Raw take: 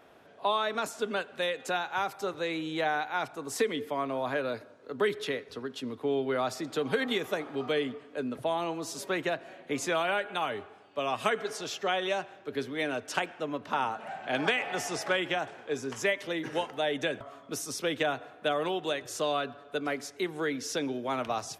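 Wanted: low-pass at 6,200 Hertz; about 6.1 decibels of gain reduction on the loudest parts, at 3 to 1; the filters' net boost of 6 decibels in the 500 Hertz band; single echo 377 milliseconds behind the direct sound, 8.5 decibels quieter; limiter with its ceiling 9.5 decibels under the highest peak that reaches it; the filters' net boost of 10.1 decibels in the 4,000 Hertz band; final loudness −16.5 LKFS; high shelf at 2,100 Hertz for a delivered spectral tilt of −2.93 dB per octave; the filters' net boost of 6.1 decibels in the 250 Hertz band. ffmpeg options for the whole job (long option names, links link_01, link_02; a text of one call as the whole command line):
ffmpeg -i in.wav -af "lowpass=6200,equalizer=frequency=250:width_type=o:gain=5.5,equalizer=frequency=500:width_type=o:gain=5.5,highshelf=frequency=2100:gain=4.5,equalizer=frequency=4000:width_type=o:gain=9,acompressor=threshold=-25dB:ratio=3,alimiter=limit=-20.5dB:level=0:latency=1,aecho=1:1:377:0.376,volume=14dB" out.wav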